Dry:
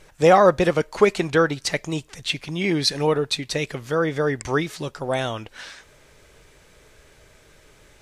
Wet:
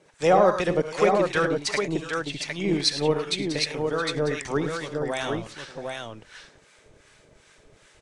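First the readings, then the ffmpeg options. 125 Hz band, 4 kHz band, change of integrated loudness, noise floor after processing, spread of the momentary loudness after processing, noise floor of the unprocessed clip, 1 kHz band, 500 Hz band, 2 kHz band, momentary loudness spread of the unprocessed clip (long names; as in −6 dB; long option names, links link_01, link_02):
−4.5 dB, −1.5 dB, −3.0 dB, −58 dBFS, 14 LU, −53 dBFS, −3.0 dB, −3.0 dB, −3.0 dB, 14 LU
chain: -filter_complex "[0:a]aecho=1:1:61|72|106|668|758:0.15|0.2|0.335|0.141|0.596,acrossover=split=140|5500[link_01][link_02][link_03];[link_01]acrusher=bits=6:dc=4:mix=0:aa=0.000001[link_04];[link_04][link_02][link_03]amix=inputs=3:normalize=0,aresample=22050,aresample=44100,acrossover=split=850[link_05][link_06];[link_05]aeval=exprs='val(0)*(1-0.7/2+0.7/2*cos(2*PI*2.6*n/s))':channel_layout=same[link_07];[link_06]aeval=exprs='val(0)*(1-0.7/2-0.7/2*cos(2*PI*2.6*n/s))':channel_layout=same[link_08];[link_07][link_08]amix=inputs=2:normalize=0,volume=-1.5dB"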